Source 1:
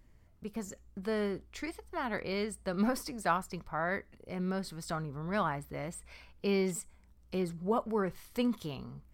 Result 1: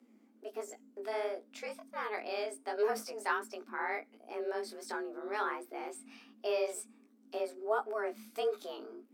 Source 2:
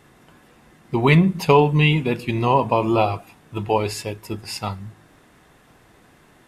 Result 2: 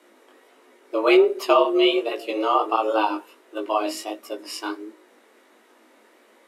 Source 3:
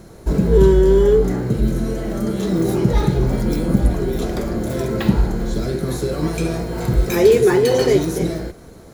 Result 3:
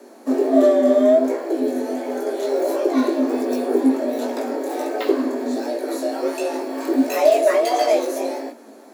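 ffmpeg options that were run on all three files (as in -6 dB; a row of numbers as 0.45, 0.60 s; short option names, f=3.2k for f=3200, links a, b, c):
-af "afreqshift=210,flanger=delay=16.5:depth=6.2:speed=1.4"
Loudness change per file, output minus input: -2.5, -2.0, -2.0 LU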